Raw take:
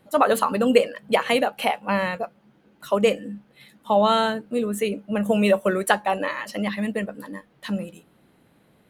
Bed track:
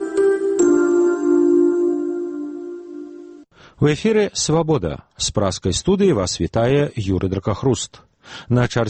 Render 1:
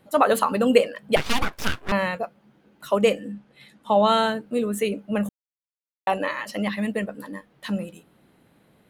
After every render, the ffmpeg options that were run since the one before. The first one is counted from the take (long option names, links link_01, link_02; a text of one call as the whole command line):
ffmpeg -i in.wav -filter_complex "[0:a]asettb=1/sr,asplit=3[link_01][link_02][link_03];[link_01]atrim=end=1.164[link_04];[link_02]atrim=start=1.16:end=1.92,asetpts=PTS-STARTPTS,afade=type=in:duration=0.004:curve=qsin,afade=type=out:start_time=0.756:duration=0.004:curve=qsin,aeval=exprs='abs(val(0))':channel_layout=same[link_05];[link_03]atrim=start=1.916[link_06];[link_04][link_05]acrossfade=duration=0.004:curve1=hsin:curve2=qsin[link_07];[link_07][link_06]acrossfade=duration=0.004:curve1=qsin:curve2=hsin,asettb=1/sr,asplit=3[link_08][link_09][link_10];[link_08]atrim=end=3.324[link_11];[link_09]atrim=start=3.32:end=4.07,asetpts=PTS-STARTPTS,afade=type=in:duration=0.004:curve=qsin,afade=type=out:start_time=0.746:duration=0.004:curve=qsin,lowpass=9700[link_12];[link_10]atrim=start=4.066[link_13];[link_11][link_12]acrossfade=duration=0.004:curve1=hsin:curve2=qsin[link_14];[link_14][link_13]acrossfade=duration=0.004:curve1=qsin:curve2=hsin,asplit=3[link_15][link_16][link_17];[link_15]atrim=end=5.29,asetpts=PTS-STARTPTS,afade=type=out:start_time=5.286:duration=0.004:curve=hsin[link_18];[link_16]atrim=start=5.29:end=6.07,asetpts=PTS-STARTPTS,volume=0[link_19];[link_17]atrim=start=6.07,asetpts=PTS-STARTPTS,afade=type=in:duration=0.004:curve=hsin[link_20];[link_18][link_19][link_20]concat=n=3:v=0:a=1" out.wav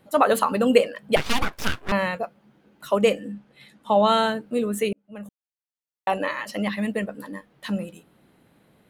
ffmpeg -i in.wav -filter_complex "[0:a]asplit=2[link_01][link_02];[link_01]atrim=end=4.93,asetpts=PTS-STARTPTS,afade=type=out:start_time=4.926:duration=0.004:curve=hsin[link_03];[link_02]atrim=start=4.93,asetpts=PTS-STARTPTS,afade=type=in:duration=1.25[link_04];[link_03][link_04]concat=n=2:v=0:a=1" out.wav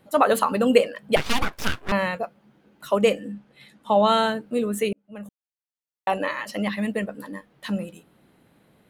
ffmpeg -i in.wav -af anull out.wav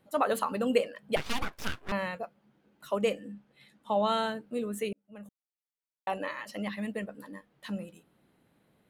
ffmpeg -i in.wav -af "volume=-9dB" out.wav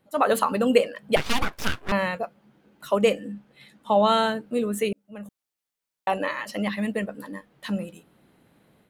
ffmpeg -i in.wav -af "dynaudnorm=framelen=130:gausssize=3:maxgain=8dB" out.wav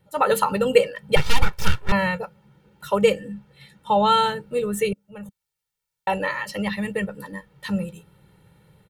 ffmpeg -i in.wav -af "lowshelf=frequency=250:width_type=q:width=3:gain=6.5,aecho=1:1:2.2:0.92" out.wav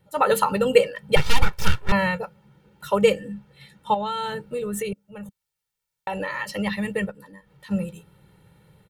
ffmpeg -i in.wav -filter_complex "[0:a]asettb=1/sr,asplit=3[link_01][link_02][link_03];[link_01]atrim=end=3.944[link_04];[link_02]atrim=start=3.94:end=6.4,asetpts=PTS-STARTPTS,afade=type=in:duration=0.004:curve=qsin,afade=type=out:start_time=2.456:duration=0.004:curve=qsin,acompressor=threshold=-24dB:ratio=6:attack=3.2:release=140:knee=1:detection=peak[link_05];[link_03]atrim=start=6.396[link_06];[link_04][link_05]acrossfade=duration=0.004:curve1=hsin:curve2=qsin[link_07];[link_07][link_06]acrossfade=duration=0.004:curve1=qsin:curve2=hsin,asplit=3[link_08][link_09][link_10];[link_08]afade=type=out:start_time=7.1:duration=0.02[link_11];[link_09]acompressor=threshold=-51dB:ratio=2:attack=3.2:release=140:knee=1:detection=peak,afade=type=in:start_time=7.1:duration=0.02,afade=type=out:start_time=7.7:duration=0.02[link_12];[link_10]afade=type=in:start_time=7.7:duration=0.02[link_13];[link_11][link_12][link_13]amix=inputs=3:normalize=0" out.wav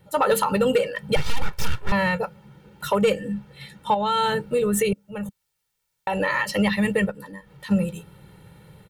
ffmpeg -i in.wav -af "acontrast=76,alimiter=limit=-11.5dB:level=0:latency=1:release=248" out.wav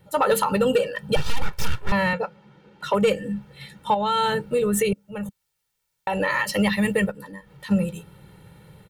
ffmpeg -i in.wav -filter_complex "[0:a]asettb=1/sr,asplit=3[link_01][link_02][link_03];[link_01]atrim=end=0.614[link_04];[link_02]atrim=start=0.61:end=1.3,asetpts=PTS-STARTPTS,afade=type=in:duration=0.004:curve=qsin,afade=type=out:start_time=0.686:duration=0.004:curve=qsin,asuperstop=centerf=2100:order=8:qfactor=5.7[link_05];[link_03]atrim=start=1.296[link_06];[link_04][link_05]acrossfade=duration=0.004:curve1=hsin:curve2=qsin[link_07];[link_07][link_06]acrossfade=duration=0.004:curve1=qsin:curve2=hsin,asettb=1/sr,asplit=3[link_08][link_09][link_10];[link_08]atrim=end=2.134[link_11];[link_09]atrim=start=2.13:end=2.94,asetpts=PTS-STARTPTS,afade=type=in:duration=0.004:curve=qsin,afade=type=out:start_time=0.806:duration=0.004:curve=qsin,acrossover=split=170 6400:gain=0.251 1 0.141[link_12][link_13][link_14];[link_12][link_13][link_14]amix=inputs=3:normalize=0[link_15];[link_10]atrim=start=2.936[link_16];[link_11][link_15]acrossfade=duration=0.004:curve1=hsin:curve2=qsin[link_17];[link_17][link_16]acrossfade=duration=0.004:curve1=qsin:curve2=hsin,asettb=1/sr,asplit=3[link_18][link_19][link_20];[link_18]atrim=end=6.294[link_21];[link_19]atrim=start=6.29:end=7.12,asetpts=PTS-STARTPTS,afade=type=in:duration=0.004:curve=qsin,afade=type=out:start_time=0.826:duration=0.004:curve=qsin,highshelf=frequency=8100:gain=6[link_22];[link_20]atrim=start=7.116[link_23];[link_21][link_22]acrossfade=duration=0.004:curve1=hsin:curve2=qsin[link_24];[link_24][link_23]acrossfade=duration=0.004:curve1=qsin:curve2=hsin" out.wav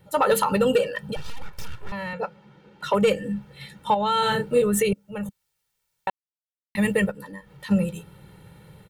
ffmpeg -i in.wav -filter_complex "[0:a]asplit=3[link_01][link_02][link_03];[link_01]afade=type=out:start_time=1.02:duration=0.02[link_04];[link_02]acompressor=threshold=-27dB:ratio=6:attack=3.2:release=140:knee=1:detection=peak,afade=type=in:start_time=1.02:duration=0.02,afade=type=out:start_time=2.21:duration=0.02[link_05];[link_03]afade=type=in:start_time=2.21:duration=0.02[link_06];[link_04][link_05][link_06]amix=inputs=3:normalize=0,asettb=1/sr,asplit=3[link_07][link_08][link_09];[link_07]atrim=end=4.194[link_10];[link_08]atrim=start=4.19:end=4.62,asetpts=PTS-STARTPTS,afade=type=in:duration=0.004:curve=qsin,afade=type=out:start_time=0.426:duration=0.004:curve=qsin,asplit=2[link_11][link_12];[link_12]adelay=33,volume=-3.5dB[link_13];[link_11][link_13]amix=inputs=2:normalize=0,atrim=end_sample=18963[link_14];[link_09]atrim=start=4.616[link_15];[link_10][link_14]acrossfade=duration=0.004:curve1=hsin:curve2=qsin[link_16];[link_16][link_15]acrossfade=duration=0.004:curve1=qsin:curve2=hsin,asplit=3[link_17][link_18][link_19];[link_17]atrim=end=6.1,asetpts=PTS-STARTPTS,afade=type=out:start_time=6.096:duration=0.004:curve=hsin[link_20];[link_18]atrim=start=6.1:end=6.75,asetpts=PTS-STARTPTS,volume=0[link_21];[link_19]atrim=start=6.75,asetpts=PTS-STARTPTS,afade=type=in:duration=0.004:curve=hsin[link_22];[link_20][link_21][link_22]concat=n=3:v=0:a=1" out.wav